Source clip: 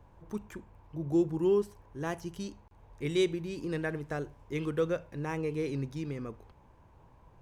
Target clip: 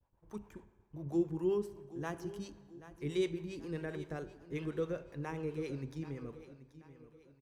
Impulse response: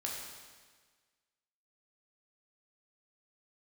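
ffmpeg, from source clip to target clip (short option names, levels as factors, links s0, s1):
-filter_complex "[0:a]acrossover=split=460[s0][s1];[s0]aeval=exprs='val(0)*(1-0.7/2+0.7/2*cos(2*PI*7.5*n/s))':c=same[s2];[s1]aeval=exprs='val(0)*(1-0.7/2-0.7/2*cos(2*PI*7.5*n/s))':c=same[s3];[s2][s3]amix=inputs=2:normalize=0,agate=range=0.0224:threshold=0.00316:ratio=3:detection=peak,aecho=1:1:782|1564|2346|3128:0.178|0.0729|0.0299|0.0123,asplit=2[s4][s5];[1:a]atrim=start_sample=2205,highshelf=f=5600:g=-10[s6];[s5][s6]afir=irnorm=-1:irlink=0,volume=0.237[s7];[s4][s7]amix=inputs=2:normalize=0,volume=0.631"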